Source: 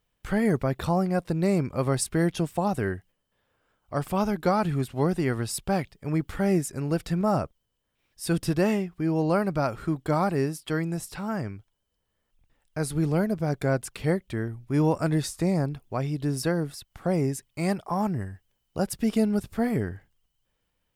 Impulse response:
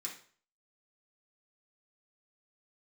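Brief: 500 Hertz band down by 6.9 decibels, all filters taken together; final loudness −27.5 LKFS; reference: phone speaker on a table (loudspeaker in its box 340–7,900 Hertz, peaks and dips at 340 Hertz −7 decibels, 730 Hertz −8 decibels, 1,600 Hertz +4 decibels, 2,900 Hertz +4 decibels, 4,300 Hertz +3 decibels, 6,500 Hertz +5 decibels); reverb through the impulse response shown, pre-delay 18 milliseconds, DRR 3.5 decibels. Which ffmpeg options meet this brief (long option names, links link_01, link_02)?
-filter_complex "[0:a]equalizer=frequency=500:width_type=o:gain=-4.5,asplit=2[link_01][link_02];[1:a]atrim=start_sample=2205,adelay=18[link_03];[link_02][link_03]afir=irnorm=-1:irlink=0,volume=-2dB[link_04];[link_01][link_04]amix=inputs=2:normalize=0,highpass=frequency=340:width=0.5412,highpass=frequency=340:width=1.3066,equalizer=frequency=340:width_type=q:width=4:gain=-7,equalizer=frequency=730:width_type=q:width=4:gain=-8,equalizer=frequency=1600:width_type=q:width=4:gain=4,equalizer=frequency=2900:width_type=q:width=4:gain=4,equalizer=frequency=4300:width_type=q:width=4:gain=3,equalizer=frequency=6500:width_type=q:width=4:gain=5,lowpass=frequency=7900:width=0.5412,lowpass=frequency=7900:width=1.3066,volume=5.5dB"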